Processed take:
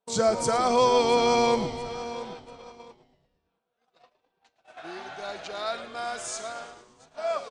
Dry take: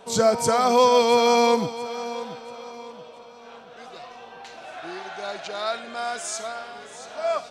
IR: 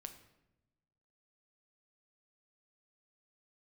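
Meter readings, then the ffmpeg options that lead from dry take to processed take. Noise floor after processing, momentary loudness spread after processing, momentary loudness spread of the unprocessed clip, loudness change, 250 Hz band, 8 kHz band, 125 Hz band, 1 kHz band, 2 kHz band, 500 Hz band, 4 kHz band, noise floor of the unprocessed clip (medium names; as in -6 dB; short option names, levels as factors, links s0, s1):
-79 dBFS, 20 LU, 23 LU, -4.0 dB, -3.5 dB, -4.0 dB, -1.0 dB, -4.0 dB, -4.0 dB, -4.0 dB, -4.0 dB, -45 dBFS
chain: -filter_complex "[0:a]agate=range=0.0224:threshold=0.0141:ratio=16:detection=peak,asplit=2[s0][s1];[s1]asplit=6[s2][s3][s4][s5][s6][s7];[s2]adelay=112,afreqshift=-110,volume=0.178[s8];[s3]adelay=224,afreqshift=-220,volume=0.107[s9];[s4]adelay=336,afreqshift=-330,volume=0.0638[s10];[s5]adelay=448,afreqshift=-440,volume=0.0385[s11];[s6]adelay=560,afreqshift=-550,volume=0.0232[s12];[s7]adelay=672,afreqshift=-660,volume=0.0138[s13];[s8][s9][s10][s11][s12][s13]amix=inputs=6:normalize=0[s14];[s0][s14]amix=inputs=2:normalize=0,aresample=22050,aresample=44100,volume=0.631"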